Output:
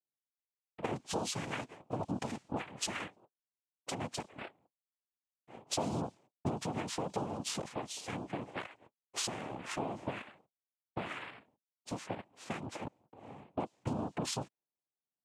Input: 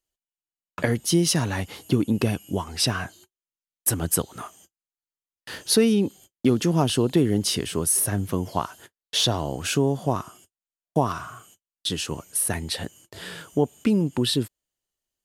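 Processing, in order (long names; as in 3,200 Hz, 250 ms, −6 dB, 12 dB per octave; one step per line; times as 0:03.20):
low-pass that shuts in the quiet parts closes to 320 Hz, open at −16.5 dBFS
high-pass filter 200 Hz
notch filter 3,400 Hz, Q 16
downward compressor 5 to 1, threshold −30 dBFS, peak gain reduction 14 dB
cochlear-implant simulation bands 4
level −4 dB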